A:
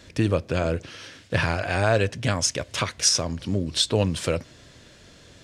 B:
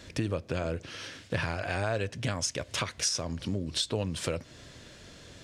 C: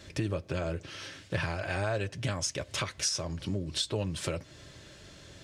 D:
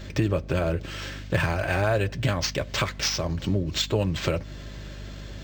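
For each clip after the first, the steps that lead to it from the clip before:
compression 2.5:1, threshold -31 dBFS, peak gain reduction 11 dB
comb of notches 240 Hz
hum 50 Hz, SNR 13 dB; decimation joined by straight lines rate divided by 4×; trim +8 dB

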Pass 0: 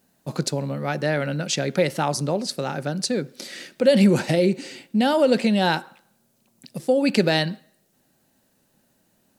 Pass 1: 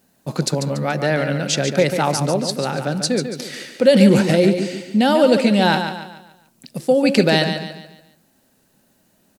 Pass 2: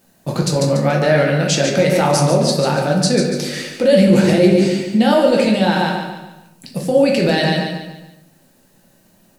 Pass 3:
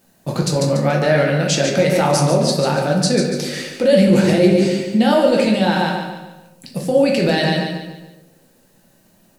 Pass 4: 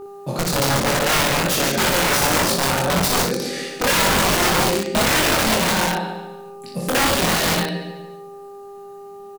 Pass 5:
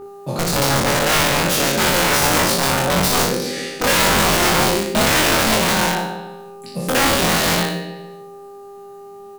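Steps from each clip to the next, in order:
feedback delay 143 ms, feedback 40%, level -8 dB; trim +4 dB
peak limiter -11.5 dBFS, peak gain reduction 10 dB; reverberation RT60 0.60 s, pre-delay 6 ms, DRR 0 dB; trim +3 dB
band-passed feedback delay 64 ms, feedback 80%, band-pass 460 Hz, level -18 dB; trim -1 dB
mains buzz 400 Hz, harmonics 3, -33 dBFS -9 dB/octave; integer overflow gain 11 dB; early reflections 23 ms -3 dB, 59 ms -5 dB; trim -4 dB
spectral sustain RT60 0.56 s

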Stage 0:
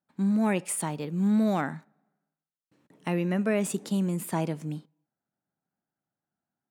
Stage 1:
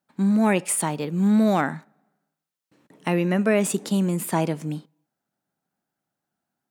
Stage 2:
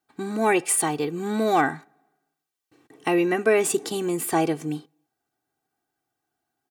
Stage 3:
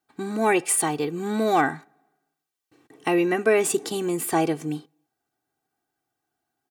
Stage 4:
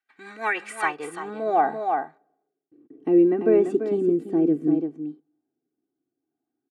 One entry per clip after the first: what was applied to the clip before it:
bass shelf 150 Hz -6 dB; trim +7 dB
comb 2.6 ms, depth 83%
no audible change
band-pass sweep 2 kHz -> 290 Hz, 0.34–2.72 s; delay 340 ms -7.5 dB; rotary cabinet horn 6 Hz, later 0.65 Hz, at 0.51 s; trim +8.5 dB

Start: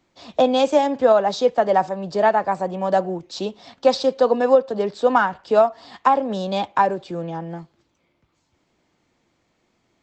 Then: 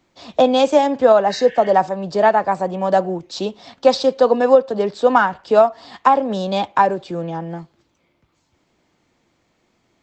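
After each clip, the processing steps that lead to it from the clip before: spectral replace 1.32–1.69 s, 1.5–3.7 kHz; trim +3 dB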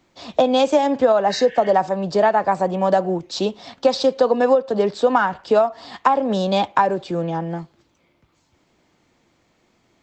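compression 6:1, threshold -14 dBFS, peak gain reduction 8.5 dB; trim +2 dB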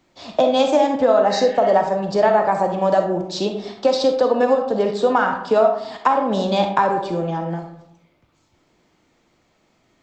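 reverberation RT60 0.80 s, pre-delay 5 ms, DRR 4 dB; trim -1 dB

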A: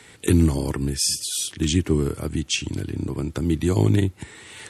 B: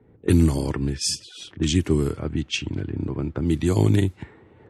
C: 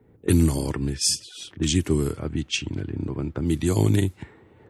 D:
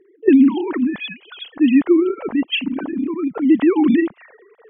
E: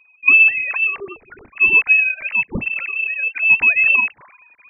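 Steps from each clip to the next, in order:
level-controlled noise filter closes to 400 Hz, open at -16.5 dBFS
treble shelf 7.7 kHz +11 dB; trim -1.5 dB
formants replaced by sine waves; trim +7 dB
frequency inversion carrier 2.9 kHz

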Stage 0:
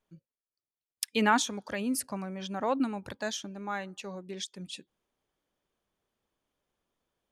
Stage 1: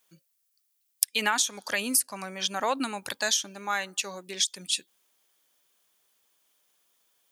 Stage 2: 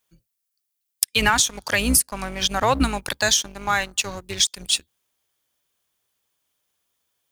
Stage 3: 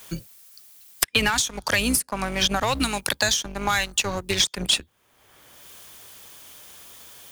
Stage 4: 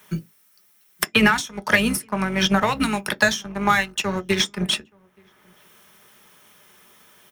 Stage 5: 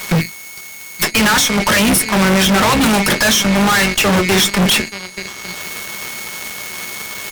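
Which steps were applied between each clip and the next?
tilt EQ +4.5 dB/octave; compression 10:1, threshold -27 dBFS, peak gain reduction 14 dB; trim +6 dB
octave divider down 2 oct, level -2 dB; waveshaping leveller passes 2; tone controls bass +4 dB, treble -1 dB
saturation -9.5 dBFS, distortion -19 dB; three bands compressed up and down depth 100%; trim -1 dB
echo from a far wall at 150 m, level -26 dB; reverberation RT60 0.15 s, pre-delay 3 ms, DRR 7.5 dB; upward expansion 1.5:1, over -28 dBFS; trim -1 dB
whistle 2.2 kHz -44 dBFS; fuzz box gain 41 dB, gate -45 dBFS; Chebyshev shaper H 6 -20 dB, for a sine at -9.5 dBFS; trim +2 dB

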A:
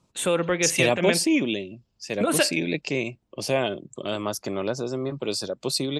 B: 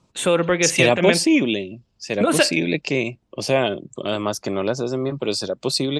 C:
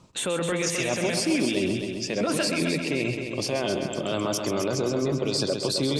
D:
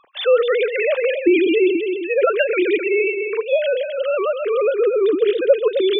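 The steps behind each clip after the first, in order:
Bessel low-pass 7.7 kHz, order 2; trim +5 dB
reverse; compression 6:1, threshold -26 dBFS, peak gain reduction 15 dB; reverse; peak limiter -25 dBFS, peak gain reduction 10.5 dB; multi-head delay 131 ms, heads first and second, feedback 51%, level -9 dB; trim +7.5 dB
formants replaced by sine waves; trim +8.5 dB

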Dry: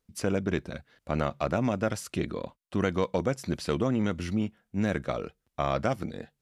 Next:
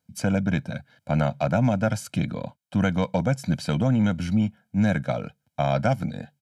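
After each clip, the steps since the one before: high-pass 110 Hz 24 dB/octave; bass shelf 270 Hz +8.5 dB; comb 1.3 ms, depth 89%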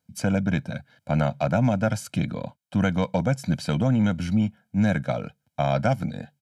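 no audible change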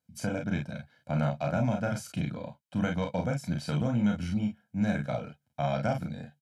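early reflections 34 ms -4 dB, 48 ms -8 dB; trim -8 dB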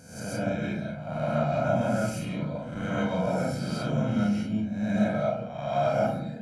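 reverse spectral sustain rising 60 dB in 0.79 s; reverberation RT60 0.65 s, pre-delay 88 ms, DRR -8 dB; trim -8 dB

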